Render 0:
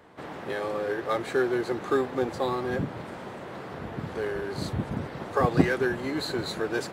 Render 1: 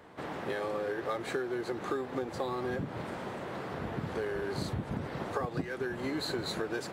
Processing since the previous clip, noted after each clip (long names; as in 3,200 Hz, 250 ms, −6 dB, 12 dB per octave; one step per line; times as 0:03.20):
downward compressor 16 to 1, threshold −30 dBFS, peak gain reduction 18 dB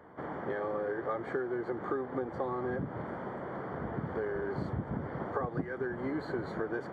Savitzky-Golay smoothing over 41 samples
mains-hum notches 50/100 Hz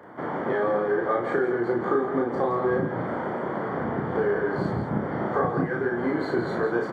high-pass filter 130 Hz 12 dB per octave
double-tracking delay 34 ms −2 dB
on a send: loudspeakers that aren't time-aligned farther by 20 metres −12 dB, 57 metres −9 dB
on the sum: level +7.5 dB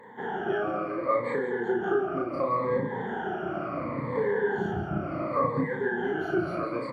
rippled gain that drifts along the octave scale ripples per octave 1, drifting −0.7 Hz, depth 21 dB
parametric band 2,600 Hz +12 dB 0.34 octaves
level −7.5 dB